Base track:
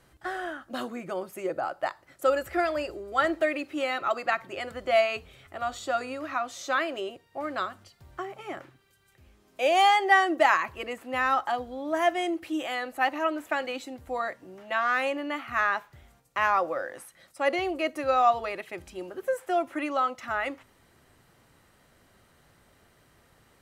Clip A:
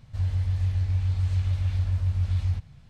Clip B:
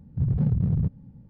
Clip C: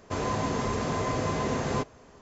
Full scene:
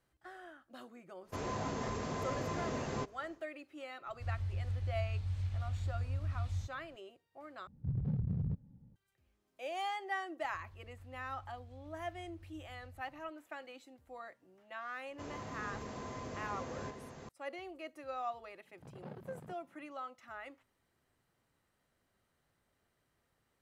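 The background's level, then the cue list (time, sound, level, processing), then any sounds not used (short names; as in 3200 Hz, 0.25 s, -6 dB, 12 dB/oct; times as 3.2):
base track -18 dB
1.22 add C -9.5 dB, fades 0.10 s + short-mantissa float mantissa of 8-bit
4.07 add A -12 dB
7.67 replace with B -12 dB
10.41 add A -18 dB + compressor 5:1, threshold -35 dBFS
15.08 add C -16.5 dB + echo 0.436 s -5 dB
18.65 add B -3 dB + Chebyshev high-pass 670 Hz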